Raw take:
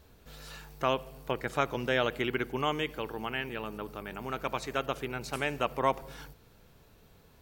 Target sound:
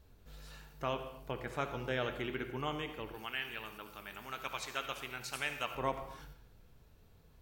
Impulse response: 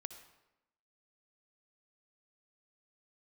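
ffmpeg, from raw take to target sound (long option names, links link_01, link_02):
-filter_complex "[0:a]asettb=1/sr,asplit=3[link_01][link_02][link_03];[link_01]atrim=end=3.144[link_04];[link_02]atrim=start=3.14:end=5.75,asetpts=PTS-STARTPTS,afade=type=in:duration=0.004:curve=qsin,afade=type=out:start_time=2.606:duration=0.004:curve=qsin,tiltshelf=frequency=970:gain=-8.5[link_05];[link_03]atrim=start=5.746[link_06];[link_04][link_05]acrossfade=duration=0.004:curve1=hsin:curve2=qsin[link_07];[link_07][link_06]acrossfade=duration=0.004:curve1=qsin:curve2=hsin[link_08];[1:a]atrim=start_sample=2205,afade=type=out:start_time=0.35:duration=0.01,atrim=end_sample=15876[link_09];[link_08][link_09]afir=irnorm=-1:irlink=0,flanger=delay=5.7:depth=9.4:regen=-76:speed=1.1:shape=triangular,lowshelf=frequency=110:gain=10"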